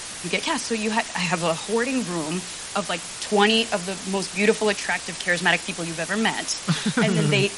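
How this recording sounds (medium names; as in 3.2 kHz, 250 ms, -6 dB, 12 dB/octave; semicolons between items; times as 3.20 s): tremolo triangle 0.95 Hz, depth 60%; a quantiser's noise floor 6-bit, dither triangular; MP3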